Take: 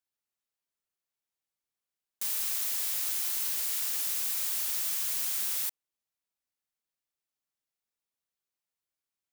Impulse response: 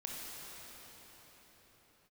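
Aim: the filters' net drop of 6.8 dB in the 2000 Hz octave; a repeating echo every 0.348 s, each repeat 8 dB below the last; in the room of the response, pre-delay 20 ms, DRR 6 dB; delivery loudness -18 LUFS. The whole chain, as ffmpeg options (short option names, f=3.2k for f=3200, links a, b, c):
-filter_complex "[0:a]equalizer=f=2k:t=o:g=-9,aecho=1:1:348|696|1044|1392|1740:0.398|0.159|0.0637|0.0255|0.0102,asplit=2[a][b];[1:a]atrim=start_sample=2205,adelay=20[c];[b][c]afir=irnorm=-1:irlink=0,volume=-6.5dB[d];[a][d]amix=inputs=2:normalize=0,volume=9.5dB"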